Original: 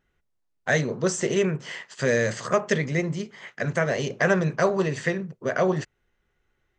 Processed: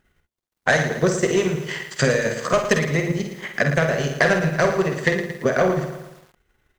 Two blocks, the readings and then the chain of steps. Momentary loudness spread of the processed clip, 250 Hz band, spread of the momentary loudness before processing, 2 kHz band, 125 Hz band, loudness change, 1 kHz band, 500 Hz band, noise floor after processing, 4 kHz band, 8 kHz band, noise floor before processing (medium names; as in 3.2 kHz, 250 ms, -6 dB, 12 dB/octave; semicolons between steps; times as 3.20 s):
8 LU, +3.5 dB, 10 LU, +5.5 dB, +4.0 dB, +4.0 dB, +5.0 dB, +4.0 dB, -80 dBFS, +6.0 dB, +3.5 dB, -74 dBFS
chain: de-hum 58.42 Hz, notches 18; Chebyshev shaper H 5 -13 dB, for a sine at -7.5 dBFS; in parallel at +0.5 dB: compression, threshold -27 dBFS, peak gain reduction 12 dB; on the sum: word length cut 12-bit, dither none; transient shaper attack +8 dB, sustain -11 dB; on a send: early reflections 49 ms -7.5 dB, 63 ms -12.5 dB; on the sum: bit-crushed delay 113 ms, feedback 55%, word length 6-bit, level -9.5 dB; trim -6.5 dB